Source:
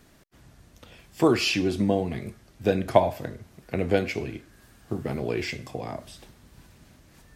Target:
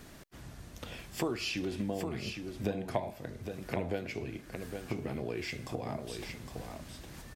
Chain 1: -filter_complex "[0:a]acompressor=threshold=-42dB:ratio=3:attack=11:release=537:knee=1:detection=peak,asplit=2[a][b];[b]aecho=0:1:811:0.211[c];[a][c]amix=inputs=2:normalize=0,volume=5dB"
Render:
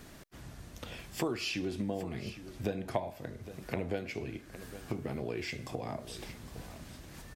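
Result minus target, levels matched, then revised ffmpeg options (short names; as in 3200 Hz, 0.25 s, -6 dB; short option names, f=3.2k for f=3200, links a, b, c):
echo-to-direct -7 dB
-filter_complex "[0:a]acompressor=threshold=-42dB:ratio=3:attack=11:release=537:knee=1:detection=peak,asplit=2[a][b];[b]aecho=0:1:811:0.473[c];[a][c]amix=inputs=2:normalize=0,volume=5dB"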